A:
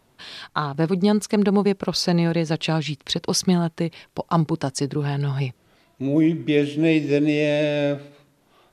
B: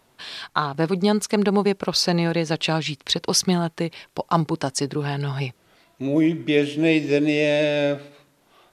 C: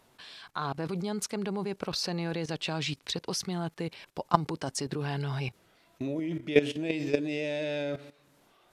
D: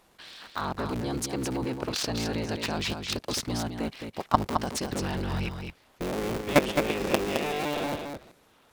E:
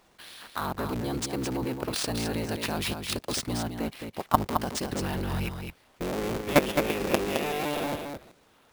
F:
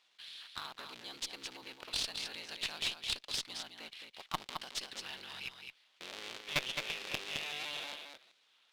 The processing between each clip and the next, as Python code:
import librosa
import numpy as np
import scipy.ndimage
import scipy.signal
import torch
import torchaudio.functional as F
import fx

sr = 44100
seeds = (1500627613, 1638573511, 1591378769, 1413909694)

y1 = fx.low_shelf(x, sr, hz=330.0, db=-7.0)
y1 = y1 * 10.0 ** (3.0 / 20.0)
y2 = fx.level_steps(y1, sr, step_db=16)
y3 = fx.cycle_switch(y2, sr, every=3, mode='inverted')
y3 = y3 + 10.0 ** (-6.0 / 20.0) * np.pad(y3, (int(215 * sr / 1000.0), 0))[:len(y3)]
y3 = y3 * 10.0 ** (1.5 / 20.0)
y4 = fx.sample_hold(y3, sr, seeds[0], rate_hz=14000.0, jitter_pct=0)
y5 = fx.bandpass_q(y4, sr, hz=3500.0, q=1.8)
y5 = fx.tube_stage(y5, sr, drive_db=25.0, bias=0.75)
y5 = y5 * 10.0 ** (4.5 / 20.0)